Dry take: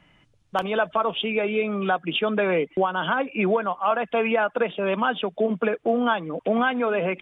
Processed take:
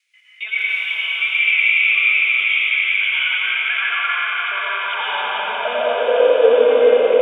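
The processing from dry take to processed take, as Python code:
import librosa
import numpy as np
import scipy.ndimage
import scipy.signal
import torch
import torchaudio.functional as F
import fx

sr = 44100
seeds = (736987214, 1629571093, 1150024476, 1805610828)

y = fx.block_reorder(x, sr, ms=135.0, group=3)
y = fx.tilt_eq(y, sr, slope=2.0)
y = fx.over_compress(y, sr, threshold_db=-28.0, ratio=-0.5)
y = fx.step_gate(y, sr, bpm=75, pattern='x.xxxxxx.x.xx', floor_db=-12.0, edge_ms=4.5)
y = fx.filter_sweep_highpass(y, sr, from_hz=2200.0, to_hz=450.0, start_s=3.12, end_s=6.33, q=7.2)
y = fx.echo_swell(y, sr, ms=88, loudest=8, wet_db=-14)
y = fx.rev_plate(y, sr, seeds[0], rt60_s=4.3, hf_ratio=0.95, predelay_ms=90, drr_db=-8.0)
y = fx.hpss(y, sr, part='percussive', gain_db=-8)
y = y * 10.0 ** (-2.0 / 20.0)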